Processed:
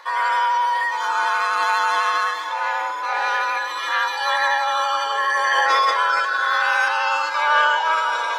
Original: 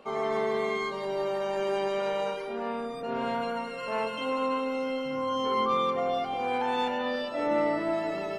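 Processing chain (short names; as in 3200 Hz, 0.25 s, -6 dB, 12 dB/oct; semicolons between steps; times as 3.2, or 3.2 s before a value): frequency shift +300 Hz; vibrato 12 Hz 21 cents; diffused feedback echo 0.532 s, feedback 63%, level -14 dB; formant shift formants +5 st; gain +9 dB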